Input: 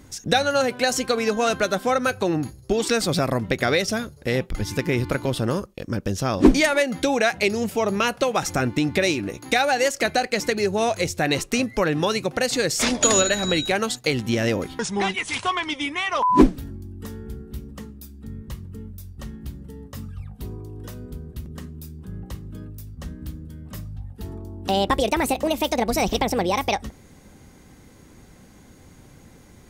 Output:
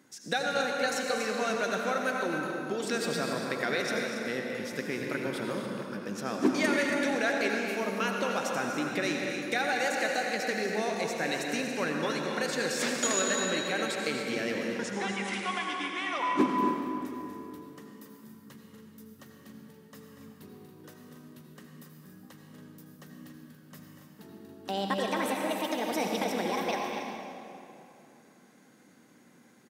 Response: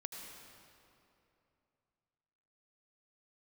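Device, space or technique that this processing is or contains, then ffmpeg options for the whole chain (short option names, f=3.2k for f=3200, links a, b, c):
stadium PA: -filter_complex "[0:a]highpass=f=170:w=0.5412,highpass=f=170:w=1.3066,equalizer=f=1.6k:t=o:w=0.55:g=5.5,aecho=1:1:239.1|279.9:0.316|0.316[a];[1:a]atrim=start_sample=2205[b];[a][b]afir=irnorm=-1:irlink=0,volume=-7.5dB"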